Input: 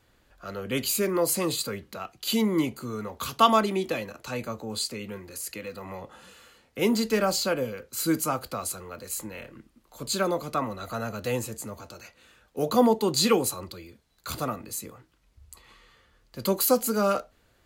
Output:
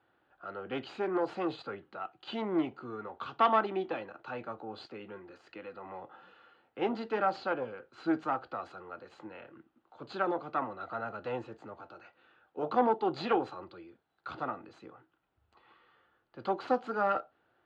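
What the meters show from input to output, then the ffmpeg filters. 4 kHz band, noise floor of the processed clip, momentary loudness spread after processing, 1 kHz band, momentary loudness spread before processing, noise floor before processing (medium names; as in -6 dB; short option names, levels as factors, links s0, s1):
-16.0 dB, -76 dBFS, 19 LU, -3.0 dB, 18 LU, -65 dBFS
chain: -af "aeval=exprs='0.531*(cos(1*acos(clip(val(0)/0.531,-1,1)))-cos(1*PI/2))+0.119*(cos(4*acos(clip(val(0)/0.531,-1,1)))-cos(4*PI/2))':c=same,asoftclip=type=tanh:threshold=0.398,highpass=150,equalizer=f=210:t=q:w=4:g=-5,equalizer=f=340:t=q:w=4:g=6,equalizer=f=790:t=q:w=4:g=10,equalizer=f=1400:t=q:w=4:g=8,equalizer=f=2200:t=q:w=4:g=-5,lowpass=f=3200:w=0.5412,lowpass=f=3200:w=1.3066,volume=0.376"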